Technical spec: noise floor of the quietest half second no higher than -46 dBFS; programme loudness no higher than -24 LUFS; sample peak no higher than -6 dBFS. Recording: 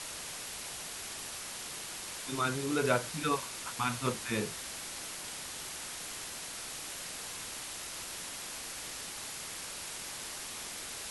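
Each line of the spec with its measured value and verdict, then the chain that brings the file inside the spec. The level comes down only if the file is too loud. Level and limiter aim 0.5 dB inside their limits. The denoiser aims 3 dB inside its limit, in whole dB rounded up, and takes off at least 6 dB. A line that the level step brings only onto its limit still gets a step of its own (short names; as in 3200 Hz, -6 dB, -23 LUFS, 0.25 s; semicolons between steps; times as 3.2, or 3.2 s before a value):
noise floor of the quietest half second -42 dBFS: fail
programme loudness -37.0 LUFS: OK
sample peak -14.5 dBFS: OK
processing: denoiser 7 dB, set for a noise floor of -42 dBFS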